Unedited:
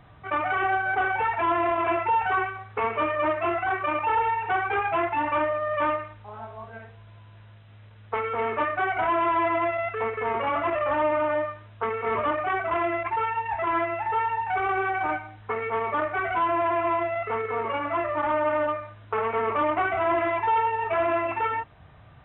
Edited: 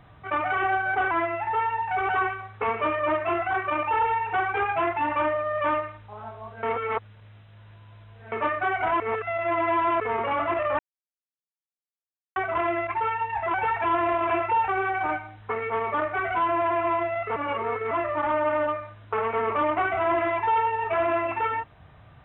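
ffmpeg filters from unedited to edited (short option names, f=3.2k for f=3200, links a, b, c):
-filter_complex "[0:a]asplit=13[a][b][c][d][e][f][g][h][i][j][k][l][m];[a]atrim=end=1.112[n];[b]atrim=start=13.698:end=14.682[o];[c]atrim=start=2.248:end=6.792[p];[d]atrim=start=6.788:end=8.482,asetpts=PTS-STARTPTS,areverse[q];[e]atrim=start=8.478:end=9.162[r];[f]atrim=start=9.158:end=10.162,asetpts=PTS-STARTPTS,areverse[s];[g]atrim=start=10.158:end=10.95,asetpts=PTS-STARTPTS,afade=t=out:st=0.788:d=0.004:c=hsin[t];[h]atrim=start=10.95:end=12.52,asetpts=PTS-STARTPTS,volume=0[u];[i]atrim=start=12.52:end=13.702,asetpts=PTS-STARTPTS,afade=t=in:d=0.004:c=hsin[v];[j]atrim=start=1.108:end=2.252[w];[k]atrim=start=14.678:end=17.362[x];[l]atrim=start=17.358:end=17.912,asetpts=PTS-STARTPTS,areverse[y];[m]atrim=start=17.908[z];[n][o]acrossfade=d=0.004:c1=hsin:c2=hsin[aa];[aa][p]acrossfade=d=0.004:c1=hsin:c2=hsin[ab];[ab][q]acrossfade=d=0.004:c1=hsin:c2=hsin[ac];[ac][r]acrossfade=d=0.004:c1=hsin:c2=hsin[ad];[ad][s]acrossfade=d=0.004:c1=hsin:c2=hsin[ae];[t][u][v]concat=n=3:v=0:a=1[af];[ae][af]acrossfade=d=0.004:c1=hsin:c2=hsin[ag];[ag][w]acrossfade=d=0.004:c1=hsin:c2=hsin[ah];[ah][x]acrossfade=d=0.004:c1=hsin:c2=hsin[ai];[ai][y]acrossfade=d=0.004:c1=hsin:c2=hsin[aj];[aj][z]acrossfade=d=0.004:c1=hsin:c2=hsin"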